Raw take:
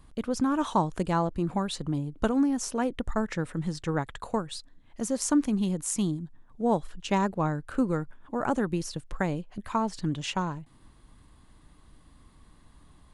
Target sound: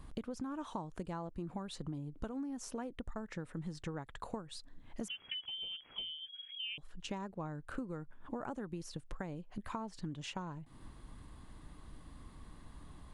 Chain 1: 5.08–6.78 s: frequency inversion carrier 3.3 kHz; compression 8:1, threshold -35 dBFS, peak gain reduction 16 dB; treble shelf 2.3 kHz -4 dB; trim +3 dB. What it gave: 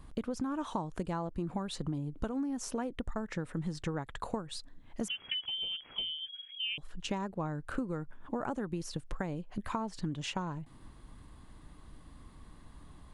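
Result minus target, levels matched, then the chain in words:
compression: peak gain reduction -6 dB
5.08–6.78 s: frequency inversion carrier 3.3 kHz; compression 8:1, threshold -42 dBFS, peak gain reduction 22 dB; treble shelf 2.3 kHz -4 dB; trim +3 dB

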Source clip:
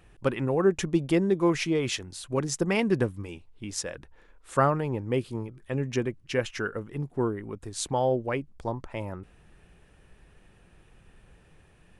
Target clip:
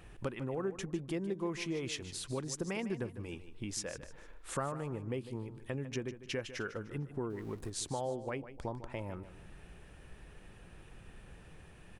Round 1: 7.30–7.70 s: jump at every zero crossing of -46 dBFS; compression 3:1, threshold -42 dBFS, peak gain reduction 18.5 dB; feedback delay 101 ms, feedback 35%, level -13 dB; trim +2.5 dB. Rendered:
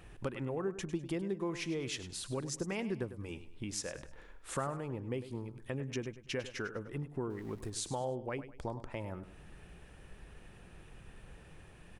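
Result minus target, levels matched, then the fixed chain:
echo 50 ms early
7.30–7.70 s: jump at every zero crossing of -46 dBFS; compression 3:1, threshold -42 dBFS, peak gain reduction 18.5 dB; feedback delay 151 ms, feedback 35%, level -13 dB; trim +2.5 dB

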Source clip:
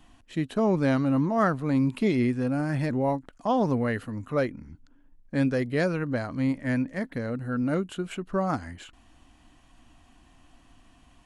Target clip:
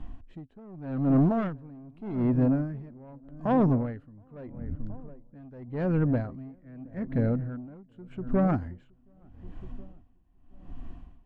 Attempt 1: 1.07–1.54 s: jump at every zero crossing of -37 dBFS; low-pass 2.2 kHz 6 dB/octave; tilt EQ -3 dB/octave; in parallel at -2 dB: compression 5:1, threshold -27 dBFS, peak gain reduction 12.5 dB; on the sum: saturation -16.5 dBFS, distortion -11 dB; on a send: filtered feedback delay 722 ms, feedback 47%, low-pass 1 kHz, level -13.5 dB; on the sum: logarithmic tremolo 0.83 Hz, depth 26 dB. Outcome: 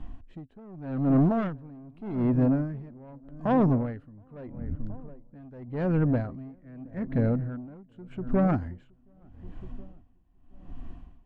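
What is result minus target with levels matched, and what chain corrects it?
compression: peak gain reduction -7 dB
1.07–1.54 s: jump at every zero crossing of -37 dBFS; low-pass 2.2 kHz 6 dB/octave; tilt EQ -3 dB/octave; in parallel at -2 dB: compression 5:1, threshold -36 dBFS, peak gain reduction 20 dB; on the sum: saturation -16.5 dBFS, distortion -12 dB; on a send: filtered feedback delay 722 ms, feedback 47%, low-pass 1 kHz, level -13.5 dB; on the sum: logarithmic tremolo 0.83 Hz, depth 26 dB

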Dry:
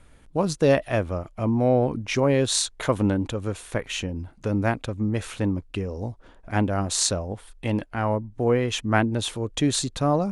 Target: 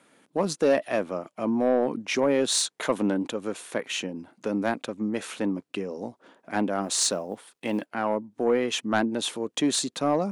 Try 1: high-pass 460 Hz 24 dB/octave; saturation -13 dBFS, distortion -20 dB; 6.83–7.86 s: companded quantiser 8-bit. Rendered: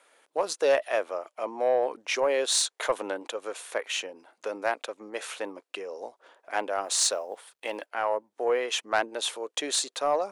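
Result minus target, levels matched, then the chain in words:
250 Hz band -14.0 dB
high-pass 200 Hz 24 dB/octave; saturation -13 dBFS, distortion -17 dB; 6.83–7.86 s: companded quantiser 8-bit

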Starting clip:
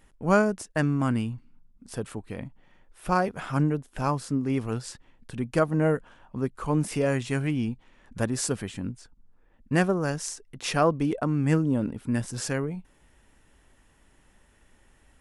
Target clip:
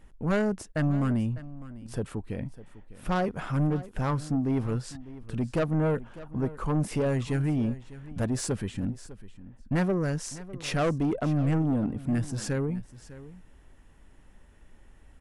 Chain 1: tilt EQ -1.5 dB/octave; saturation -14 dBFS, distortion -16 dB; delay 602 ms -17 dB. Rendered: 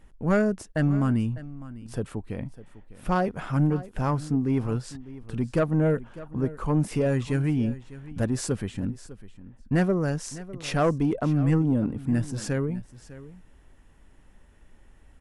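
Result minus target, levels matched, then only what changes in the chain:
saturation: distortion -7 dB
change: saturation -21 dBFS, distortion -9 dB

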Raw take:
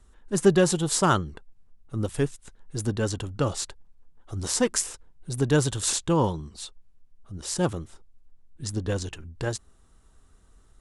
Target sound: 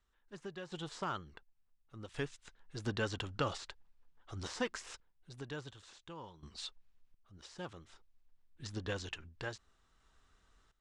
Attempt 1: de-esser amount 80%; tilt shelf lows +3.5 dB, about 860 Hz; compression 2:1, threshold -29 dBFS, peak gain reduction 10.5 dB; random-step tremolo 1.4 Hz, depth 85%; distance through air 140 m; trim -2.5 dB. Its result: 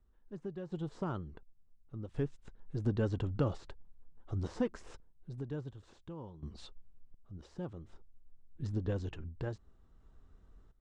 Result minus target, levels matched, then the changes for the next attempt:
1 kHz band -7.5 dB
change: tilt shelf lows -8 dB, about 860 Hz

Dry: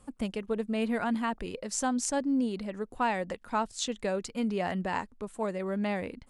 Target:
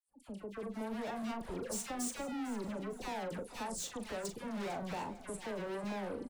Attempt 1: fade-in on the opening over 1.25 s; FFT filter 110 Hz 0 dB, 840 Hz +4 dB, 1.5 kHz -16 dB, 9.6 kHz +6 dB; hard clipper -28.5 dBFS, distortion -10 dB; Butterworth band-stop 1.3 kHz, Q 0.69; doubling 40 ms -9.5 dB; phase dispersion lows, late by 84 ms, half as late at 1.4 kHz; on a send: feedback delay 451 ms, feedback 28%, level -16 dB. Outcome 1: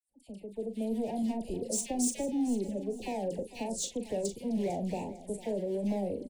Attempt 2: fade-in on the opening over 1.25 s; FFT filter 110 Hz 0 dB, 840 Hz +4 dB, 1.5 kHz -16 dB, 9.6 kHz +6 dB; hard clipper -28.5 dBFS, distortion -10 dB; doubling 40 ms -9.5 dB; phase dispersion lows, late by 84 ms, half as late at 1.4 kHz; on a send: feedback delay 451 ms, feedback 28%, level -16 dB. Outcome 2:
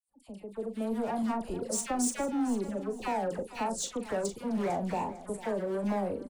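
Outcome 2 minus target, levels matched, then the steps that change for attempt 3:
hard clipper: distortion -6 dB
change: hard clipper -39 dBFS, distortion -4 dB

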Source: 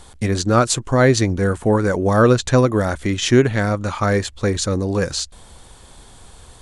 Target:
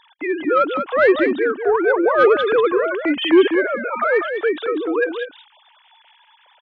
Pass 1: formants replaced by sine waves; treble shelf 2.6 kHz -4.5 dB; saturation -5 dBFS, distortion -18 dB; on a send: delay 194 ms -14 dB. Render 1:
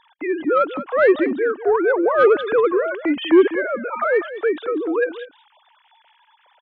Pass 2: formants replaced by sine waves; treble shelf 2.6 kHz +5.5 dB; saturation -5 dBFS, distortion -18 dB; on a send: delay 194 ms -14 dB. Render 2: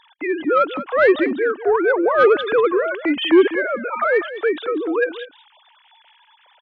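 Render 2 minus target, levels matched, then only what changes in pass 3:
echo-to-direct -6.5 dB
change: delay 194 ms -7.5 dB

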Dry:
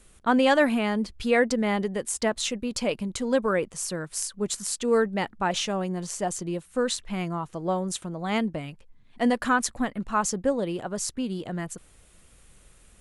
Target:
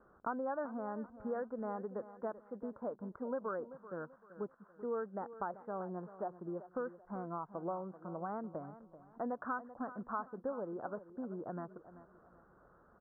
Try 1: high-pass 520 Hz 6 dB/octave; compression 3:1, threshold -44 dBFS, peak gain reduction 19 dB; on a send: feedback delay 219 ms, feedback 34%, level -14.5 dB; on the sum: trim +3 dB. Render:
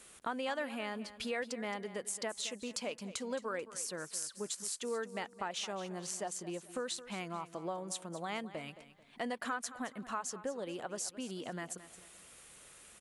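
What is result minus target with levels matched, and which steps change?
echo 167 ms early; 2 kHz band +5.5 dB
add after compression: steep low-pass 1.5 kHz 72 dB/octave; change: feedback delay 386 ms, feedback 34%, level -14.5 dB

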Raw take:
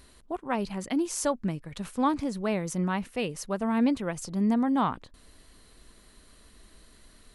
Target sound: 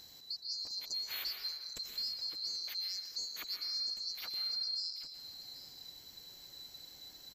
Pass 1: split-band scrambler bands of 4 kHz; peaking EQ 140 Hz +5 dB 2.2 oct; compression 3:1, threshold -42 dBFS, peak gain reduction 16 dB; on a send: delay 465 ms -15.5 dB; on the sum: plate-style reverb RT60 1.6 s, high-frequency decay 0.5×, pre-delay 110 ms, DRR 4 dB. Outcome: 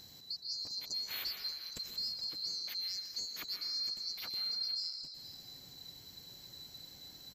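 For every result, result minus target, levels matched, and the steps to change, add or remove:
echo 318 ms early; 125 Hz band +7.0 dB
change: delay 783 ms -15.5 dB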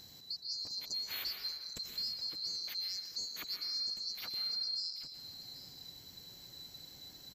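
125 Hz band +7.5 dB
change: peaking EQ 140 Hz -3.5 dB 2.2 oct

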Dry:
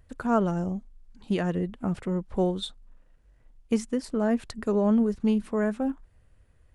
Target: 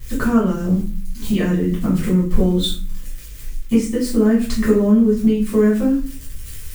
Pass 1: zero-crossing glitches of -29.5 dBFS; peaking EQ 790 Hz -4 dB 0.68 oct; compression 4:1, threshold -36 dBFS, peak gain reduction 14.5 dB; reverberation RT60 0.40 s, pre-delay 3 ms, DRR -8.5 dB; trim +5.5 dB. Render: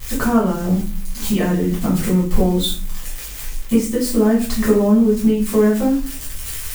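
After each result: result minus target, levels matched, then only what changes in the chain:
zero-crossing glitches: distortion +10 dB; 1 kHz band +5.0 dB
change: zero-crossing glitches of -39.5 dBFS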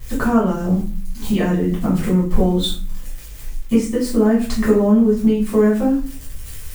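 1 kHz band +4.5 dB
change: peaking EQ 790 Hz -15 dB 0.68 oct

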